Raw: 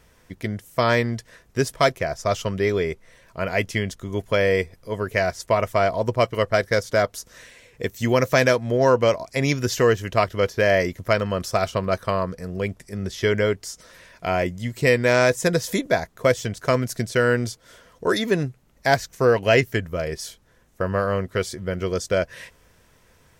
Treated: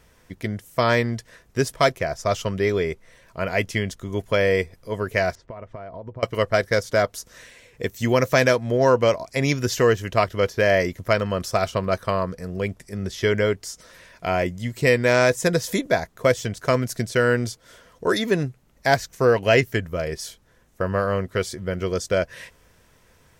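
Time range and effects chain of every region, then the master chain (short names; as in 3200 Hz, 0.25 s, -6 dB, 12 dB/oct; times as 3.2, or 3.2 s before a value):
5.35–6.23 compressor 16:1, threshold -30 dBFS + tape spacing loss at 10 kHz 37 dB
whole clip: dry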